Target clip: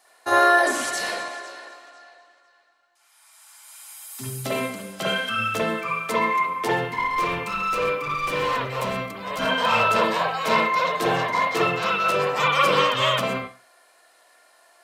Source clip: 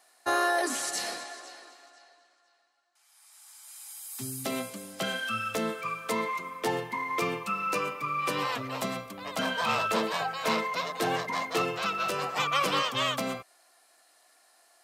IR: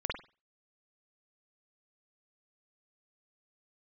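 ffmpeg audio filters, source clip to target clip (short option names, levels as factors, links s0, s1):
-filter_complex "[0:a]asettb=1/sr,asplit=3[s0][s1][s2];[s0]atrim=end=6.794[s3];[s1]atrim=start=6.79:end=9.4,asetpts=PTS-STARTPTS,afade=t=in:d=0.004:c=qsin,afade=t=out:st=2.606:d=0.004:c=qsin,asoftclip=type=hard:threshold=0.0299[s4];[s2]atrim=start=9.396[s5];[s3][s4]acrossfade=d=0.004:c1=hsin:c2=qsin[s6];[s6][s5]acrossfade=d=0.004:c1=qsin:c2=hsin[s7];[1:a]atrim=start_sample=2205[s8];[s7][s8]afir=irnorm=-1:irlink=0,volume=1.41"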